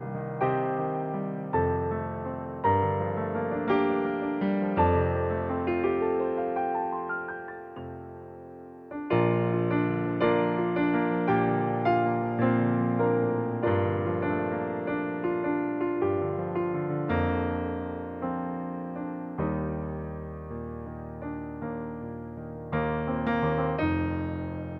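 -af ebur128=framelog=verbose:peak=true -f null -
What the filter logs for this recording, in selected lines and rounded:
Integrated loudness:
  I:         -28.4 LUFS
  Threshold: -38.7 LUFS
Loudness range:
  LRA:         8.3 LU
  Threshold: -48.7 LUFS
  LRA low:   -34.2 LUFS
  LRA high:  -25.9 LUFS
True peak:
  Peak:      -10.7 dBFS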